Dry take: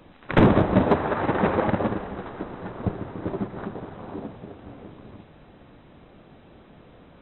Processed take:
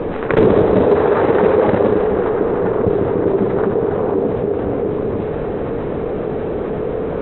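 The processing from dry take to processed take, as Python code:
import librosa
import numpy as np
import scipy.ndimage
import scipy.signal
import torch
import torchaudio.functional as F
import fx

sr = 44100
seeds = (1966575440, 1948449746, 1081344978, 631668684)

y = fx.env_lowpass(x, sr, base_hz=1700.0, full_db=-14.5)
y = fx.peak_eq(y, sr, hz=440.0, db=15.0, octaves=0.52)
y = fx.env_flatten(y, sr, amount_pct=70)
y = y * librosa.db_to_amplitude(-3.0)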